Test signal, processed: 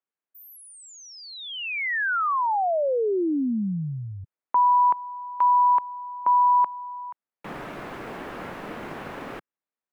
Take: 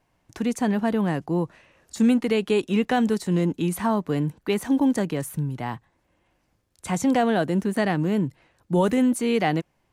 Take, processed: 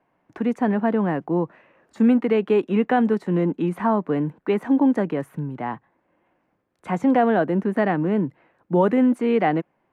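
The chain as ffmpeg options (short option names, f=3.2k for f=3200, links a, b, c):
-filter_complex "[0:a]acrossover=split=160 2300:gain=0.112 1 0.0631[a][b][c];[a][b][c]amix=inputs=3:normalize=0,volume=3.5dB"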